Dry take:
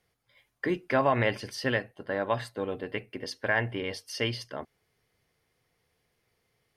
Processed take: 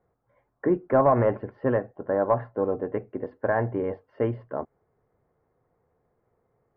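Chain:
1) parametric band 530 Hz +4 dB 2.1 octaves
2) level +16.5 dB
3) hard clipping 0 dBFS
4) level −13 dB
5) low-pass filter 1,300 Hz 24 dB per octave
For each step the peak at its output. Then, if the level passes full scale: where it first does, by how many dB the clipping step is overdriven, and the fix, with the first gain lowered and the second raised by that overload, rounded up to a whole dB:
−9.5, +7.0, 0.0, −13.0, −11.0 dBFS
step 2, 7.0 dB
step 2 +9.5 dB, step 4 −6 dB

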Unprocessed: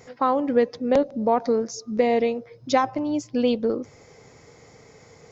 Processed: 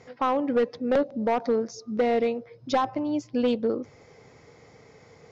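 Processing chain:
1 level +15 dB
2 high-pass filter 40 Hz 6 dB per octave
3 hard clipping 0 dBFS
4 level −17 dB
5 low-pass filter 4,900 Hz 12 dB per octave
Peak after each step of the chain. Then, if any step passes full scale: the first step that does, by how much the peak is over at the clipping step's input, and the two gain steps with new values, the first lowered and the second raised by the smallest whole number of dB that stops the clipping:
+8.0, +8.0, 0.0, −17.0, −16.5 dBFS
step 1, 8.0 dB
step 1 +7 dB, step 4 −9 dB

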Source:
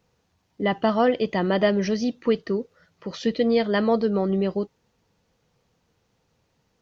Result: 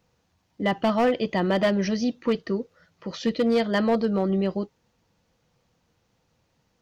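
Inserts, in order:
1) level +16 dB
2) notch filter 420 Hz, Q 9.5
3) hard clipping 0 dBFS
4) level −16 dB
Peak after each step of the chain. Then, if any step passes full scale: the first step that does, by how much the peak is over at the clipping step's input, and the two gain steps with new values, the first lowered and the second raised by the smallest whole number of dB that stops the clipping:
+7.0, +6.0, 0.0, −16.0 dBFS
step 1, 6.0 dB
step 1 +10 dB, step 4 −10 dB

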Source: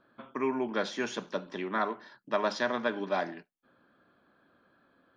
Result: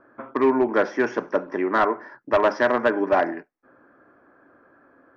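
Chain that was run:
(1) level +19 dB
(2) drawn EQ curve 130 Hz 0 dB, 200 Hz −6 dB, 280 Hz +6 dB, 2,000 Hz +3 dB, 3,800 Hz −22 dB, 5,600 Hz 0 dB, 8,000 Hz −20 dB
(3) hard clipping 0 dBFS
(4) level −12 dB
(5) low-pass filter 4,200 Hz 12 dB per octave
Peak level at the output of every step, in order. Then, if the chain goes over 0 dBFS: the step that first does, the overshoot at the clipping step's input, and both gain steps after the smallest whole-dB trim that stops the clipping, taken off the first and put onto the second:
+3.5, +7.5, 0.0, −12.0, −11.5 dBFS
step 1, 7.5 dB
step 1 +11 dB, step 4 −4 dB

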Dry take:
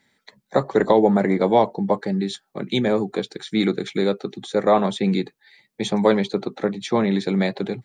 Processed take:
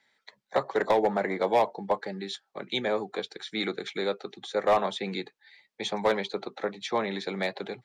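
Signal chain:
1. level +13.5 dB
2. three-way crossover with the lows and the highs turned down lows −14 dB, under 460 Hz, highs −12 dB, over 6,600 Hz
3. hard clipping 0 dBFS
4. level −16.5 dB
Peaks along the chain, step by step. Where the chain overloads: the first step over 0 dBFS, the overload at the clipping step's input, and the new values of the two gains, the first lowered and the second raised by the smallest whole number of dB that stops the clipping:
+10.0, +7.5, 0.0, −16.5 dBFS
step 1, 7.5 dB
step 1 +5.5 dB, step 4 −8.5 dB

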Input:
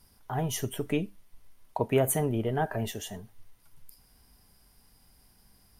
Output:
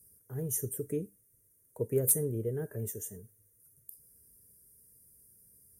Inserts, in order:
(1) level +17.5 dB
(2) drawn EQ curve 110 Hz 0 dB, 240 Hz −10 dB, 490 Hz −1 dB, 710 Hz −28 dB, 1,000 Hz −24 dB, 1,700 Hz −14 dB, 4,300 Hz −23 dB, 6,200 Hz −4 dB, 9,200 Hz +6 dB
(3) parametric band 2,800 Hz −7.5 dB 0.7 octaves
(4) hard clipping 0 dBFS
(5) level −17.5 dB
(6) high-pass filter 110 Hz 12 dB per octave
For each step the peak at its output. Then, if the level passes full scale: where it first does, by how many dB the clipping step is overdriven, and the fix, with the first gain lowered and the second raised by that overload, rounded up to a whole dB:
+5.0, +9.5, +9.5, 0.0, −17.5, −17.0 dBFS
step 1, 9.5 dB
step 1 +7.5 dB, step 5 −7.5 dB

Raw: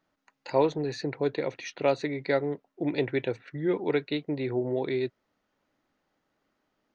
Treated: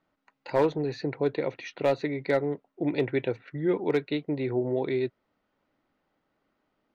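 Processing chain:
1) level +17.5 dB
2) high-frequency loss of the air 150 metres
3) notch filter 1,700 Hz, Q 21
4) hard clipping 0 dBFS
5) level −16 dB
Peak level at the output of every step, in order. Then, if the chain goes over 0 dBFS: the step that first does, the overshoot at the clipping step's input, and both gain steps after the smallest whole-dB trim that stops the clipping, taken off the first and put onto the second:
+6.5, +6.0, +6.0, 0.0, −16.0 dBFS
step 1, 6.0 dB
step 1 +11.5 dB, step 5 −10 dB

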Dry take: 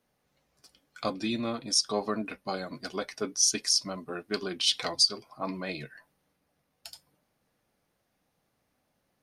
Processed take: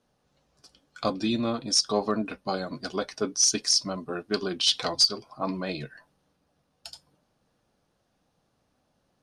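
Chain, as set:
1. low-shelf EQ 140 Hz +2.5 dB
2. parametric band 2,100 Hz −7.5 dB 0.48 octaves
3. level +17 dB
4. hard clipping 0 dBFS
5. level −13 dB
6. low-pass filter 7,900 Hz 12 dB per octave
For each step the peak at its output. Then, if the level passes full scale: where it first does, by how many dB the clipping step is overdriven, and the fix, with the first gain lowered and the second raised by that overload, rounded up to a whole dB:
−11.0, −11.0, +6.0, 0.0, −13.0, −12.0 dBFS
step 3, 6.0 dB
step 3 +11 dB, step 5 −7 dB

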